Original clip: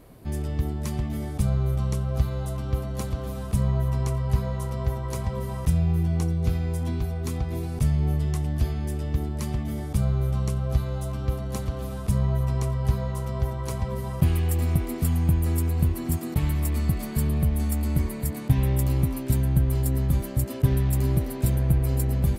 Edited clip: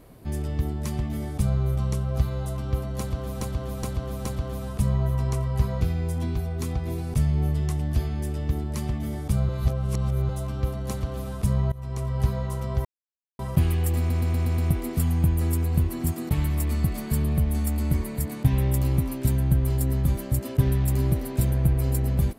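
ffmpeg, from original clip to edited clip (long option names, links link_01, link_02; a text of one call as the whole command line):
ffmpeg -i in.wav -filter_complex "[0:a]asplit=15[link_01][link_02][link_03][link_04][link_05][link_06][link_07][link_08][link_09][link_10][link_11][link_12][link_13][link_14][link_15];[link_01]atrim=end=3.412[link_16];[link_02]atrim=start=2.988:end=3.412[link_17];[link_03]atrim=start=2.988:end=3.412[link_18];[link_04]atrim=start=2.988:end=4.552[link_19];[link_05]atrim=start=6.458:end=10.142[link_20];[link_06]atrim=start=10.138:end=10.942,asetpts=PTS-STARTPTS,areverse[link_21];[link_07]atrim=start=10.938:end=12.37,asetpts=PTS-STARTPTS,afade=type=out:start_time=1.428:duration=0.004:curve=hsin:silence=0.0944061[link_22];[link_08]atrim=start=12.37:end=13.5,asetpts=PTS-STARTPTS,afade=type=in:duration=0.44:silence=0.0944061,afade=type=out:start_time=1.126:duration=0.004:curve=hsin[link_23];[link_09]atrim=start=13.5:end=14.04,asetpts=PTS-STARTPTS,volume=0[link_24];[link_10]atrim=start=14.04:end=14.752,asetpts=PTS-STARTPTS,afade=type=in:duration=0.004:curve=hsin[link_25];[link_11]atrim=start=14.628:end=14.752[link_26];[link_12]atrim=start=14.628:end=14.752[link_27];[link_13]atrim=start=14.628:end=14.752[link_28];[link_14]atrim=start=14.628:end=14.752[link_29];[link_15]atrim=start=14.628[link_30];[link_16][link_17]acrossfade=duration=0.004:curve1=hsin:curve2=hsin[link_31];[link_31][link_18]acrossfade=duration=0.004:curve1=hsin:curve2=hsin[link_32];[link_32][link_19]acrossfade=duration=0.004:curve1=hsin:curve2=hsin[link_33];[link_33][link_20]acrossfade=duration=0.004:curve1=hsin:curve2=hsin[link_34];[link_34][link_21]acrossfade=duration=0.004:curve1=hsin:curve2=hsin[link_35];[link_22][link_23][link_24][link_25]concat=n=4:v=0:a=1[link_36];[link_35][link_36]acrossfade=duration=0.004:curve1=hsin:curve2=hsin[link_37];[link_37][link_26]acrossfade=duration=0.004:curve1=hsin:curve2=hsin[link_38];[link_38][link_27]acrossfade=duration=0.004:curve1=hsin:curve2=hsin[link_39];[link_39][link_28]acrossfade=duration=0.004:curve1=hsin:curve2=hsin[link_40];[link_40][link_29]acrossfade=duration=0.004:curve1=hsin:curve2=hsin[link_41];[link_41][link_30]acrossfade=duration=0.004:curve1=hsin:curve2=hsin" out.wav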